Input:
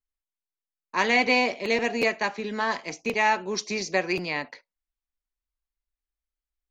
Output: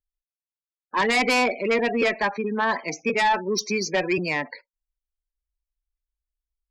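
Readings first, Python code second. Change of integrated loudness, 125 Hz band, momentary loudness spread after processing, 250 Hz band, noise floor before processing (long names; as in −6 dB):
+2.0 dB, +4.5 dB, 6 LU, +3.5 dB, below −85 dBFS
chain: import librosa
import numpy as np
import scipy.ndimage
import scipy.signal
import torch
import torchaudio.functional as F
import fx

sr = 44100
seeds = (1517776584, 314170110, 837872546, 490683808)

y = fx.spec_gate(x, sr, threshold_db=-15, keep='strong')
y = fx.cheby_harmonics(y, sr, harmonics=(2, 5), levels_db=(-18, -9), full_scale_db=-10.0)
y = F.gain(torch.from_numpy(y), -3.0).numpy()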